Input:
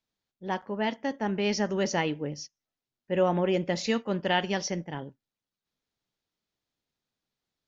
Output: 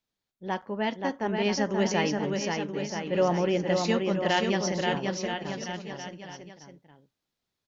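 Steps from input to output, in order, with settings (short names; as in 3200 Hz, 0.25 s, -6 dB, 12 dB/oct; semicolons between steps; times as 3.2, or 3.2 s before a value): bouncing-ball echo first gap 0.53 s, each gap 0.85×, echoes 5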